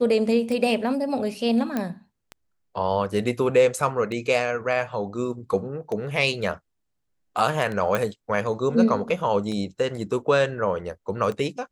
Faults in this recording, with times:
tick 33 1/3 rpm
1.77 s: pop -13 dBFS
7.95 s: pop -11 dBFS

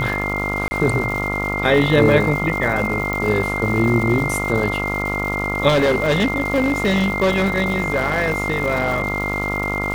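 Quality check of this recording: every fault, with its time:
buzz 50 Hz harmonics 28 -25 dBFS
crackle 420 per s -27 dBFS
whine 2.1 kHz -23 dBFS
0.68–0.71 s: dropout 30 ms
3.13 s: pop
5.68–9.48 s: clipped -12.5 dBFS

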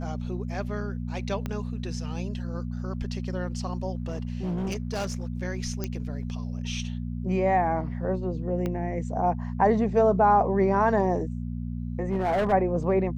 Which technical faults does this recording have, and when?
hum 60 Hz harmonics 4 -32 dBFS
1.46 s: pop -18 dBFS
3.95–5.28 s: clipped -25.5 dBFS
5.84 s: pop -16 dBFS
8.66 s: pop -18 dBFS
12.02–12.53 s: clipped -21 dBFS

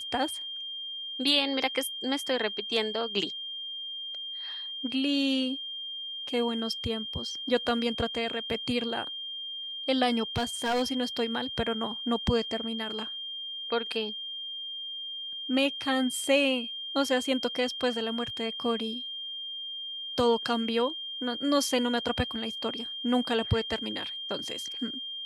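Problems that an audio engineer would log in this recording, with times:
whine 3.2 kHz -35 dBFS
10.36–10.83 s: clipped -23.5 dBFS

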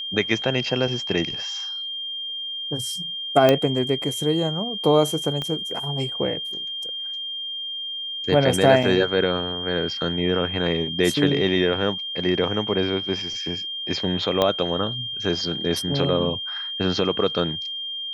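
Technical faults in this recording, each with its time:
whine 3.2 kHz -28 dBFS
3.49 s: pop -4 dBFS
5.42 s: pop -15 dBFS
8.83 s: dropout 4.3 ms
14.42 s: pop -7 dBFS

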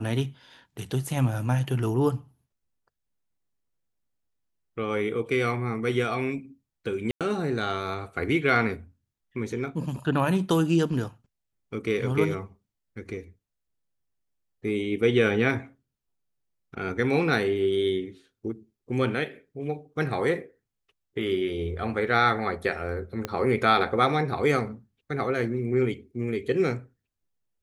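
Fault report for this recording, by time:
7.11–7.21 s: dropout 97 ms
23.25 s: pop -14 dBFS

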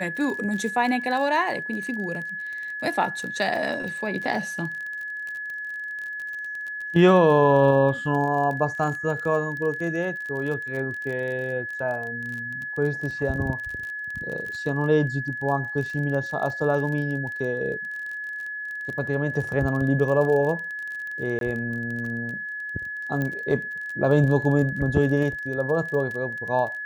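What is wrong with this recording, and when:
crackle 30 per s -31 dBFS
whine 1.7 kHz -30 dBFS
21.39–21.41 s: dropout 22 ms
23.22 s: pop -16 dBFS

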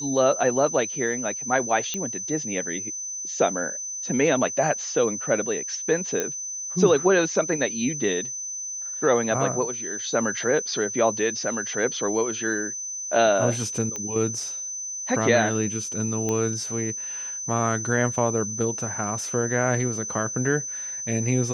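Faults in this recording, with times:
whine 6.1 kHz -30 dBFS
1.94 s: pop -13 dBFS
6.20 s: pop -11 dBFS
13.96 s: pop -17 dBFS
16.29 s: pop -14 dBFS

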